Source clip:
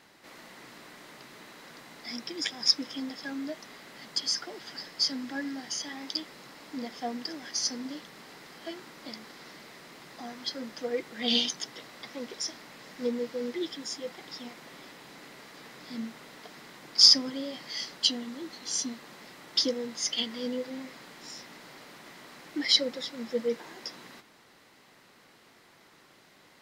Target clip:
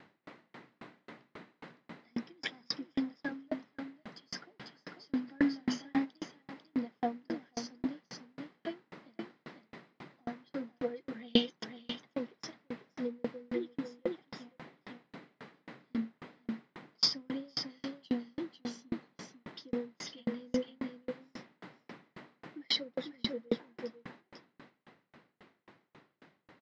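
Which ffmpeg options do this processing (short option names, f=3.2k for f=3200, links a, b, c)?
-filter_complex "[0:a]highpass=140,lowpass=2.8k,lowshelf=f=240:g=12,aecho=1:1:496:0.447,asplit=3[a][b][c];[a]afade=t=out:st=5.27:d=0.02[d];[b]acontrast=70,afade=t=in:st=5.27:d=0.02,afade=t=out:st=6.04:d=0.02[e];[c]afade=t=in:st=6.04:d=0.02[f];[d][e][f]amix=inputs=3:normalize=0,aeval=exprs='val(0)*pow(10,-39*if(lt(mod(3.7*n/s,1),2*abs(3.7)/1000),1-mod(3.7*n/s,1)/(2*abs(3.7)/1000),(mod(3.7*n/s,1)-2*abs(3.7)/1000)/(1-2*abs(3.7)/1000))/20)':c=same,volume=3dB"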